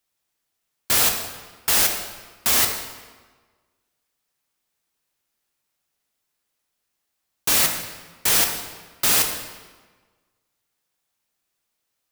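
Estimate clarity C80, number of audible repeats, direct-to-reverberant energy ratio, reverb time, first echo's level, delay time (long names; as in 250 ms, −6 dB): 7.5 dB, no echo audible, 3.0 dB, 1.4 s, no echo audible, no echo audible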